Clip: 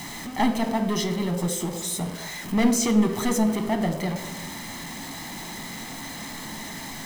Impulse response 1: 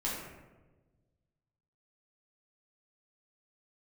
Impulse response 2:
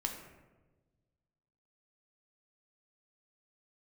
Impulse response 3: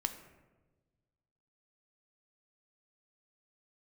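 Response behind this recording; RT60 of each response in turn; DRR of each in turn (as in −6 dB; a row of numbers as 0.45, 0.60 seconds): 3; 1.2, 1.2, 1.2 seconds; −6.5, 2.0, 7.0 decibels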